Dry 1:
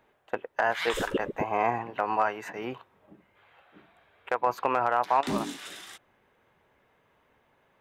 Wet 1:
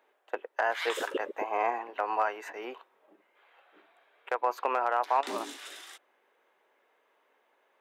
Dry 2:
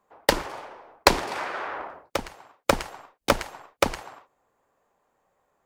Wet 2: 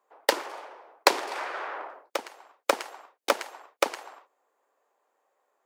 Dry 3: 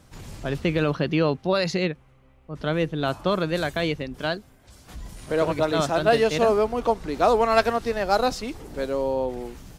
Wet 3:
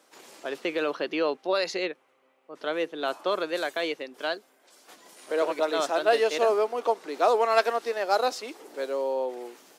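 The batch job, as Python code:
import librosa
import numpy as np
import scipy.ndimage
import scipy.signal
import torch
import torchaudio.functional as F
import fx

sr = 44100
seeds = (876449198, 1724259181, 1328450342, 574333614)

y = scipy.signal.sosfilt(scipy.signal.butter(4, 340.0, 'highpass', fs=sr, output='sos'), x)
y = F.gain(torch.from_numpy(y), -2.5).numpy()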